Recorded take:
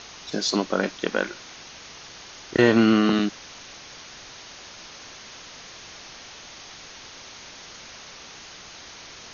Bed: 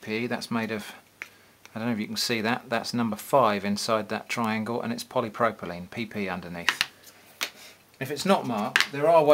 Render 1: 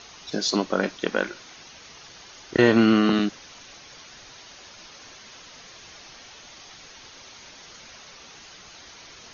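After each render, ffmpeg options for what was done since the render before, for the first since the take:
ffmpeg -i in.wav -af "afftdn=noise_reduction=6:noise_floor=-44" out.wav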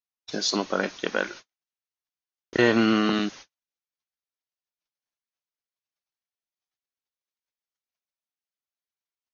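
ffmpeg -i in.wav -af "agate=range=-55dB:threshold=-39dB:ratio=16:detection=peak,lowshelf=frequency=450:gain=-5" out.wav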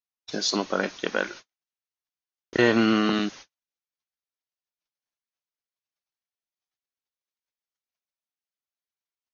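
ffmpeg -i in.wav -af anull out.wav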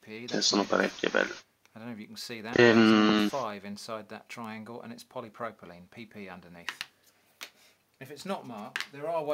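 ffmpeg -i in.wav -i bed.wav -filter_complex "[1:a]volume=-13dB[link_01];[0:a][link_01]amix=inputs=2:normalize=0" out.wav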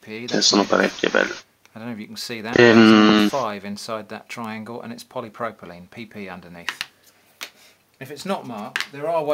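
ffmpeg -i in.wav -af "volume=9.5dB,alimiter=limit=-1dB:level=0:latency=1" out.wav

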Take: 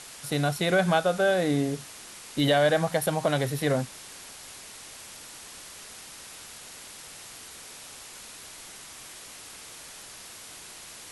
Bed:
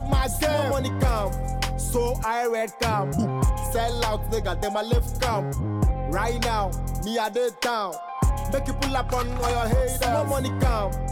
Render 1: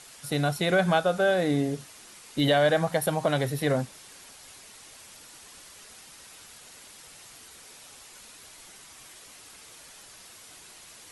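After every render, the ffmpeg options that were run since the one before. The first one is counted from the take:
ffmpeg -i in.wav -af "afftdn=noise_reduction=6:noise_floor=-45" out.wav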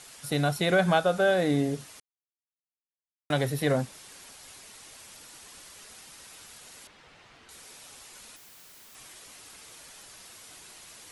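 ffmpeg -i in.wav -filter_complex "[0:a]asettb=1/sr,asplit=3[link_01][link_02][link_03];[link_01]atrim=end=6.874[link_04];[link_02]atrim=start=6.87:end=7.49,asetpts=PTS-STARTPTS,afade=type=in:duration=0.004:curve=qsin,afade=type=out:start_time=0.616:duration=0.004:curve=qsin,lowpass=2800[link_05];[link_03]atrim=start=7.486[link_06];[link_04][link_05]acrossfade=duration=0.004:curve1=hsin:curve2=qsin[link_07];[link_07][link_06]acrossfade=duration=0.004:curve1=qsin:curve2=hsin,asettb=1/sr,asplit=3[link_08][link_09][link_10];[link_08]atrim=end=8.364[link_11];[link_09]atrim=start=8.36:end=8.95,asetpts=PTS-STARTPTS,afade=type=in:duration=0.004:curve=qsin,afade=type=out:start_time=0.586:duration=0.004:curve=qsin,aeval=exprs='(mod(224*val(0)+1,2)-1)/224':channel_layout=same[link_12];[link_10]atrim=start=8.946[link_13];[link_11][link_12]acrossfade=duration=0.004:curve1=hsin:curve2=qsin[link_14];[link_14][link_13]acrossfade=duration=0.004:curve1=qsin:curve2=hsin,asplit=3[link_15][link_16][link_17];[link_15]atrim=end=2,asetpts=PTS-STARTPTS,afade=type=out:start_time=1.996:duration=0.004:curve=hsin[link_18];[link_16]atrim=start=2:end=3.3,asetpts=PTS-STARTPTS,volume=0[link_19];[link_17]atrim=start=3.3,asetpts=PTS-STARTPTS,afade=type=in:duration=0.004:curve=hsin[link_20];[link_18][link_19][link_20]concat=n=3:v=0:a=1" out.wav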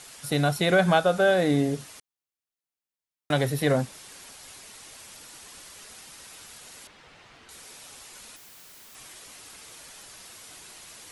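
ffmpeg -i in.wav -af "volume=2.5dB" out.wav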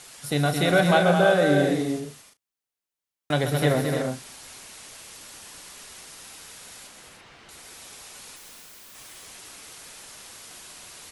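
ffmpeg -i in.wav -filter_complex "[0:a]asplit=2[link_01][link_02];[link_02]adelay=34,volume=-13dB[link_03];[link_01][link_03]amix=inputs=2:normalize=0,aecho=1:1:134|218|298|337:0.316|0.473|0.422|0.299" out.wav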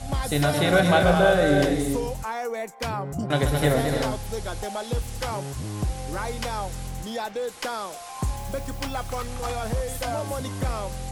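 ffmpeg -i in.wav -i bed.wav -filter_complex "[1:a]volume=-5.5dB[link_01];[0:a][link_01]amix=inputs=2:normalize=0" out.wav

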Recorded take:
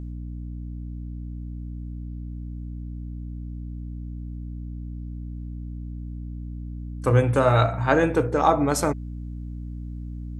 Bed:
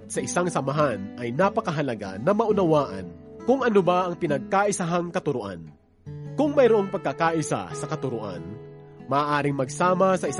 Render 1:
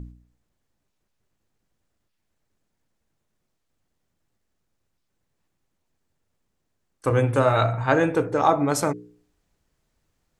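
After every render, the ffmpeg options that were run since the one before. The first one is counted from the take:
ffmpeg -i in.wav -af "bandreject=frequency=60:width_type=h:width=4,bandreject=frequency=120:width_type=h:width=4,bandreject=frequency=180:width_type=h:width=4,bandreject=frequency=240:width_type=h:width=4,bandreject=frequency=300:width_type=h:width=4,bandreject=frequency=360:width_type=h:width=4,bandreject=frequency=420:width_type=h:width=4,bandreject=frequency=480:width_type=h:width=4" out.wav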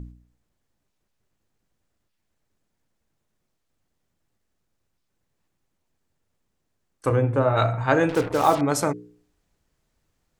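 ffmpeg -i in.wav -filter_complex "[0:a]asplit=3[link_01][link_02][link_03];[link_01]afade=type=out:start_time=7.15:duration=0.02[link_04];[link_02]lowpass=frequency=1000:poles=1,afade=type=in:start_time=7.15:duration=0.02,afade=type=out:start_time=7.56:duration=0.02[link_05];[link_03]afade=type=in:start_time=7.56:duration=0.02[link_06];[link_04][link_05][link_06]amix=inputs=3:normalize=0,asettb=1/sr,asplit=3[link_07][link_08][link_09];[link_07]atrim=end=8.094[link_10];[link_08]atrim=start=8.09:end=8.61,asetpts=PTS-STARTPTS,afade=type=in:duration=0.004:curve=qsin,afade=type=out:start_time=0.516:duration=0.004:curve=qsin,acrusher=bits=4:mix=0:aa=0.5[link_11];[link_09]atrim=start=8.606[link_12];[link_10][link_11]acrossfade=duration=0.004:curve1=hsin:curve2=qsin[link_13];[link_13][link_12]acrossfade=duration=0.004:curve1=qsin:curve2=hsin" out.wav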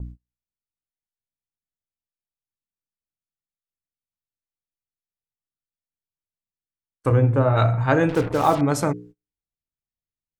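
ffmpeg -i in.wav -af "agate=range=-31dB:threshold=-44dB:ratio=16:detection=peak,bass=frequency=250:gain=6,treble=frequency=4000:gain=-3" out.wav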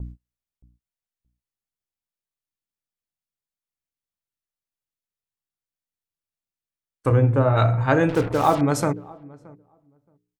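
ffmpeg -i in.wav -filter_complex "[0:a]asplit=2[link_01][link_02];[link_02]adelay=623,lowpass=frequency=950:poles=1,volume=-22dB,asplit=2[link_03][link_04];[link_04]adelay=623,lowpass=frequency=950:poles=1,volume=0.15[link_05];[link_01][link_03][link_05]amix=inputs=3:normalize=0" out.wav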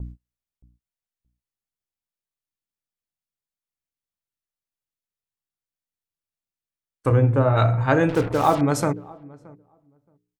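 ffmpeg -i in.wav -af anull out.wav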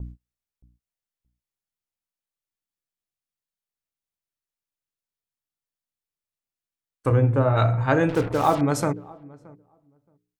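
ffmpeg -i in.wav -af "volume=-1.5dB" out.wav

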